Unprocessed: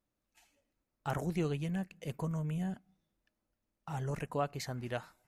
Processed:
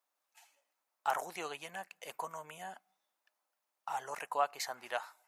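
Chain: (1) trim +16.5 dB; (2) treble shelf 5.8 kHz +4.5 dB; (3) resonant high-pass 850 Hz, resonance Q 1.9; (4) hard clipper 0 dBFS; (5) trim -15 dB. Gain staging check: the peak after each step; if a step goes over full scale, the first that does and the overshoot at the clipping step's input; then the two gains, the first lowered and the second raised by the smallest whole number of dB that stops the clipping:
-4.5 dBFS, -4.5 dBFS, -2.0 dBFS, -2.0 dBFS, -17.0 dBFS; nothing clips

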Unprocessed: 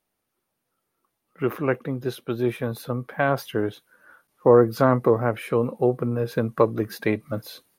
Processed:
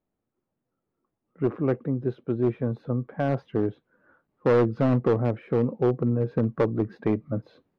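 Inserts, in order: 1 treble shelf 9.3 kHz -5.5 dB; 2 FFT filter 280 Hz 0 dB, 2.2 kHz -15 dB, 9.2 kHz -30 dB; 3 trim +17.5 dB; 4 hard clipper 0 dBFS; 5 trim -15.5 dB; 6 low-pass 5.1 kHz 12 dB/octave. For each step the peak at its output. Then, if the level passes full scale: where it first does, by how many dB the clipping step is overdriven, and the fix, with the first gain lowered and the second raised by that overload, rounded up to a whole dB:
-4.0 dBFS, -7.5 dBFS, +10.0 dBFS, 0.0 dBFS, -15.5 dBFS, -15.5 dBFS; step 3, 10.0 dB; step 3 +7.5 dB, step 5 -5.5 dB

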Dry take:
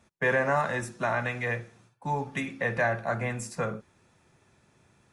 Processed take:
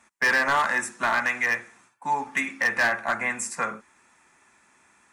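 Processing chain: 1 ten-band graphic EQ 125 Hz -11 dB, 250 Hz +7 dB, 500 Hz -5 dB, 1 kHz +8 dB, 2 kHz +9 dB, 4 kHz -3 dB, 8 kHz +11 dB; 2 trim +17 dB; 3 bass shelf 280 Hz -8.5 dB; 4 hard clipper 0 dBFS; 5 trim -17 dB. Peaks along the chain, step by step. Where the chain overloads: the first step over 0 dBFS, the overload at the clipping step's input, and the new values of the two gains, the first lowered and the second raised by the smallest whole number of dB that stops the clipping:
-7.0 dBFS, +10.0 dBFS, +9.5 dBFS, 0.0 dBFS, -17.0 dBFS; step 2, 9.5 dB; step 2 +7 dB, step 5 -7 dB

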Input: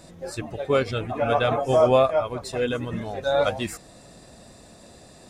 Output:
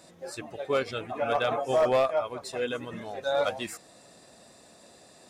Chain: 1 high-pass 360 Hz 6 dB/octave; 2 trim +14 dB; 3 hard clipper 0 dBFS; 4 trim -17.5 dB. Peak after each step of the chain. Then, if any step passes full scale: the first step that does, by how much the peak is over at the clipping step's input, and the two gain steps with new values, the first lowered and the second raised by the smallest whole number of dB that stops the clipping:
-7.0 dBFS, +7.0 dBFS, 0.0 dBFS, -17.5 dBFS; step 2, 7.0 dB; step 2 +7 dB, step 4 -10.5 dB

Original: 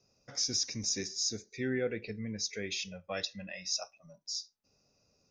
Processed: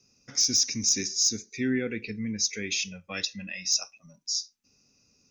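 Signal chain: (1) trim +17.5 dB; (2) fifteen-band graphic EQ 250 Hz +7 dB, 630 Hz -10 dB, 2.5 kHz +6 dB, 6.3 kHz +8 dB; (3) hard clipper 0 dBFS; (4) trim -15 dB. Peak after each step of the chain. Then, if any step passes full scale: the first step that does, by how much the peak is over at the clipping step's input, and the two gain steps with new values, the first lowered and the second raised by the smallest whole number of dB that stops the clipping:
-2.0 dBFS, +5.0 dBFS, 0.0 dBFS, -15.0 dBFS; step 2, 5.0 dB; step 1 +12.5 dB, step 4 -10 dB

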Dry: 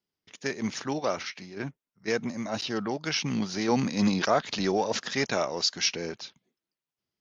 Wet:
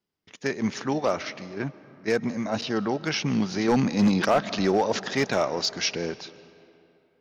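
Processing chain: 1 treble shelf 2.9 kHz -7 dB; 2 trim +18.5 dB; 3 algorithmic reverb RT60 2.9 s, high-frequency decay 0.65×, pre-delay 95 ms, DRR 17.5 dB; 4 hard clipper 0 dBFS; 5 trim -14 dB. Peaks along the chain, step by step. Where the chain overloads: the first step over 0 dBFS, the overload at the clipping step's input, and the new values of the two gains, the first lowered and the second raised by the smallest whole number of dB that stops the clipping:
-11.0 dBFS, +7.5 dBFS, +7.0 dBFS, 0.0 dBFS, -14.0 dBFS; step 2, 7.0 dB; step 2 +11.5 dB, step 5 -7 dB

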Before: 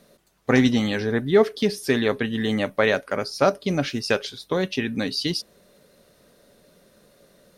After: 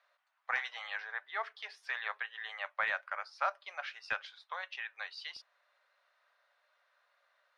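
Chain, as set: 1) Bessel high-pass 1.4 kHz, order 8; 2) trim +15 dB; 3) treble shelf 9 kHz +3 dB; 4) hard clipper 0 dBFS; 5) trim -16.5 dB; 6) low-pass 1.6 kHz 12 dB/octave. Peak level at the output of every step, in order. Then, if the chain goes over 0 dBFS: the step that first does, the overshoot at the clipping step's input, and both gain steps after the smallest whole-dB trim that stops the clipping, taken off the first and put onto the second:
-10.0 dBFS, +5.0 dBFS, +5.0 dBFS, 0.0 dBFS, -16.5 dBFS, -19.0 dBFS; step 2, 5.0 dB; step 2 +10 dB, step 5 -11.5 dB

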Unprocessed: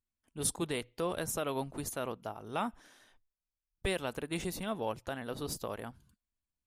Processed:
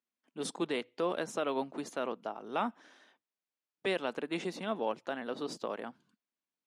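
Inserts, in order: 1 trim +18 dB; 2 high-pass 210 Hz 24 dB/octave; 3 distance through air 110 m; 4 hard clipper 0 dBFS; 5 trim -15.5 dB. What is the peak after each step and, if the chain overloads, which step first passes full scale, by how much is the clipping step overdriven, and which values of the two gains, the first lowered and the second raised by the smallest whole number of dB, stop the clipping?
-1.5 dBFS, -1.5 dBFS, -3.5 dBFS, -3.5 dBFS, -19.0 dBFS; nothing clips

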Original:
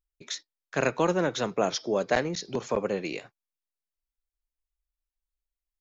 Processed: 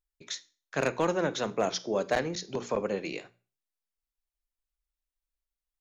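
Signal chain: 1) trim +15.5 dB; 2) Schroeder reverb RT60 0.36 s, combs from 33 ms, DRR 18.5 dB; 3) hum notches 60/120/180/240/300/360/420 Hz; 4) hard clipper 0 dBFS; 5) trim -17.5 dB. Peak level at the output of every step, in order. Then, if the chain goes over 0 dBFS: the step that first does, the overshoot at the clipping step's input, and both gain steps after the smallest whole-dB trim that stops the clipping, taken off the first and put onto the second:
+5.5 dBFS, +5.5 dBFS, +5.5 dBFS, 0.0 dBFS, -17.5 dBFS; step 1, 5.5 dB; step 1 +9.5 dB, step 5 -11.5 dB

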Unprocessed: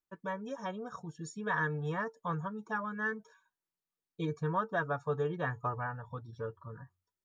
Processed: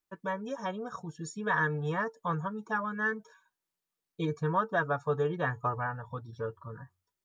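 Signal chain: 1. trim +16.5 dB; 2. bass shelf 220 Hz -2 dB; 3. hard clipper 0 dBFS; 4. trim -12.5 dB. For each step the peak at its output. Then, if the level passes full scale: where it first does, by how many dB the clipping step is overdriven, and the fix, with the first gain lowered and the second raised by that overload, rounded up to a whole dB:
-4.0 dBFS, -4.0 dBFS, -4.0 dBFS, -16.5 dBFS; nothing clips

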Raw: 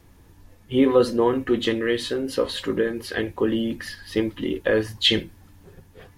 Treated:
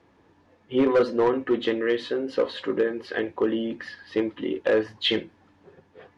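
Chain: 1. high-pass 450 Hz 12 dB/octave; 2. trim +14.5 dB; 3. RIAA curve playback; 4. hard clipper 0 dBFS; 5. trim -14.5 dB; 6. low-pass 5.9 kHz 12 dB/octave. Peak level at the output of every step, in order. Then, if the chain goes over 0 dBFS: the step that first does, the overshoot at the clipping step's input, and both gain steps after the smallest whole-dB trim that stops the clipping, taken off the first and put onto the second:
-6.5 dBFS, +8.0 dBFS, +9.0 dBFS, 0.0 dBFS, -14.5 dBFS, -14.0 dBFS; step 2, 9.0 dB; step 2 +5.5 dB, step 5 -5.5 dB

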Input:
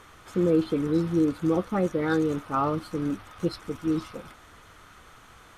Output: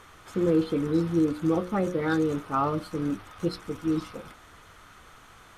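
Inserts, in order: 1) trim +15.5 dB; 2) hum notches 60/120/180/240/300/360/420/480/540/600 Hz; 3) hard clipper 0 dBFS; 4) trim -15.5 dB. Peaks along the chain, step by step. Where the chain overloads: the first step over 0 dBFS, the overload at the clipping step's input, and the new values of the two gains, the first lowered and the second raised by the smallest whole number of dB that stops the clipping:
+4.0 dBFS, +3.5 dBFS, 0.0 dBFS, -15.5 dBFS; step 1, 3.5 dB; step 1 +11.5 dB, step 4 -11.5 dB

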